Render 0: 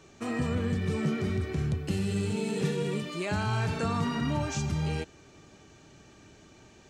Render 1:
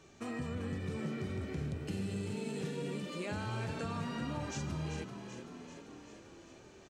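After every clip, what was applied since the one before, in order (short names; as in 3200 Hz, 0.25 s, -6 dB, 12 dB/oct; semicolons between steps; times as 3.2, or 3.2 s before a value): compressor 2:1, threshold -35 dBFS, peak gain reduction 6.5 dB; on a send: frequency-shifting echo 0.388 s, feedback 64%, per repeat +46 Hz, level -9 dB; on the sum: gain -4.5 dB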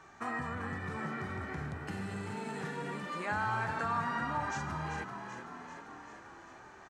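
band shelf 1200 Hz +14 dB; gain -2.5 dB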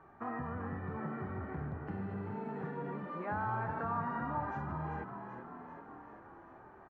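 LPF 1100 Hz 12 dB/oct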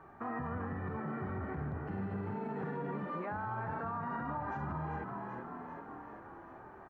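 limiter -34 dBFS, peak gain reduction 9 dB; gain +3.5 dB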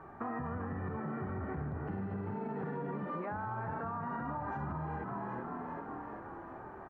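high shelf 2700 Hz -8 dB; compressor, threshold -40 dBFS, peak gain reduction 6 dB; gain +5 dB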